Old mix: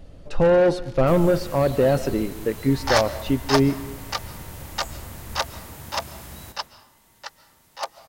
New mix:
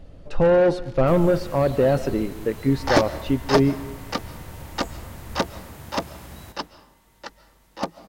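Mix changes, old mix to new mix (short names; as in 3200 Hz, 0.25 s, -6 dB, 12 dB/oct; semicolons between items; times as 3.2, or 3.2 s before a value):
second sound: remove HPF 620 Hz 24 dB/oct; master: add high shelf 4600 Hz -6.5 dB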